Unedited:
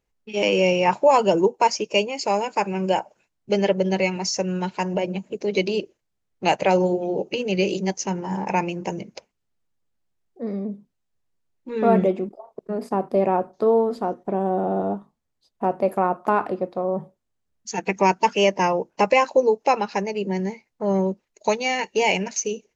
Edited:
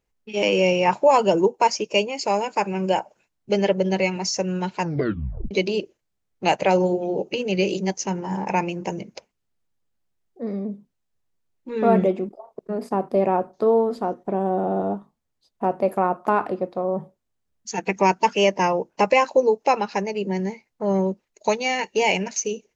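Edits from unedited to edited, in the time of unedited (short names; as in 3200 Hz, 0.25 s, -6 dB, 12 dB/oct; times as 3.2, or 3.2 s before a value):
4.81 tape stop 0.70 s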